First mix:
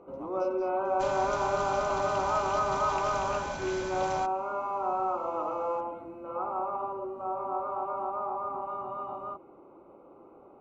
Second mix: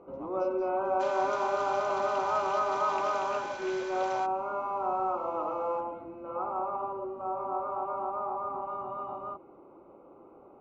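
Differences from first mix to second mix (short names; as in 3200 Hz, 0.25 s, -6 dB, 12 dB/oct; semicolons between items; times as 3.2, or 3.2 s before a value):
second sound: add HPF 1000 Hz; master: add air absorption 91 m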